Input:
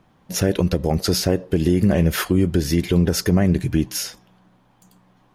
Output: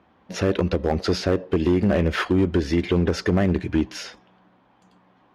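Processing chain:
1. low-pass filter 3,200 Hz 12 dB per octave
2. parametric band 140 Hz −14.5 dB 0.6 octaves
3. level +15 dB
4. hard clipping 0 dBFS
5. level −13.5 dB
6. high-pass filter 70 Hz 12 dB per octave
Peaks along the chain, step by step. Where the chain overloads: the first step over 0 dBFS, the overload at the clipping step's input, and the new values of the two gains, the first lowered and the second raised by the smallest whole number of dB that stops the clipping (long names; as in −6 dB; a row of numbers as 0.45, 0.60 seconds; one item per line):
−7.0, −8.0, +7.0, 0.0, −13.5, −8.5 dBFS
step 3, 7.0 dB
step 3 +8 dB, step 5 −6.5 dB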